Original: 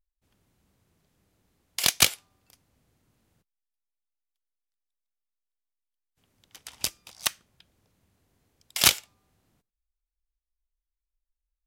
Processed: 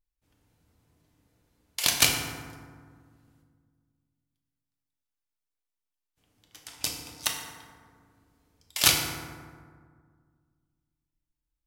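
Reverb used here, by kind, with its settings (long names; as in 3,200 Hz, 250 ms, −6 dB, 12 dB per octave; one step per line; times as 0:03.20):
feedback delay network reverb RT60 1.8 s, low-frequency decay 1.4×, high-frequency decay 0.45×, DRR 0 dB
level −2.5 dB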